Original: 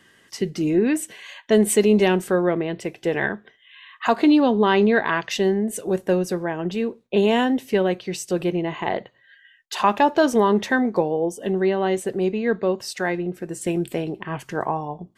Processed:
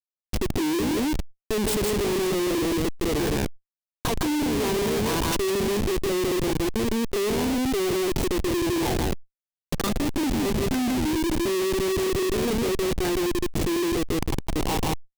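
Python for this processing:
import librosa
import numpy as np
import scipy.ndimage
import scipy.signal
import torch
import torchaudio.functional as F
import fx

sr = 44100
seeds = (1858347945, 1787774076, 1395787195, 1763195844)

y = fx.tracing_dist(x, sr, depth_ms=0.11)
y = fx.level_steps(y, sr, step_db=13)
y = fx.fixed_phaser(y, sr, hz=610.0, stages=6)
y = y + 10.0 ** (-3.5 / 20.0) * np.pad(y, (int(160 * sr / 1000.0), 0))[:len(y)]
y = fx.spec_erase(y, sr, start_s=9.65, length_s=2.44, low_hz=400.0, high_hz=1100.0)
y = fx.schmitt(y, sr, flips_db=-34.0)
y = fx.peak_eq(y, sr, hz=1300.0, db=-7.0, octaves=1.3)
y = fx.env_flatten(y, sr, amount_pct=70)
y = F.gain(torch.from_numpy(y), 5.5).numpy()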